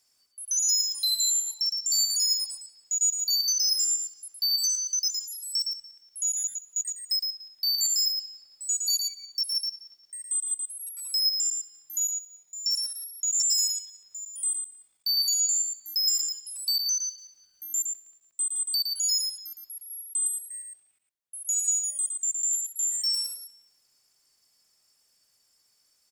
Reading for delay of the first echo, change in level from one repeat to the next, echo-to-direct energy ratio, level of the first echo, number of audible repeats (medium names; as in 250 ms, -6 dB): 113 ms, no regular repeats, -4.5 dB, -4.5 dB, 1